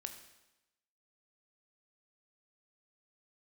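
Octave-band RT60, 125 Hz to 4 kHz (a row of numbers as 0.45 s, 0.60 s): 0.90 s, 0.95 s, 0.95 s, 0.95 s, 0.95 s, 0.95 s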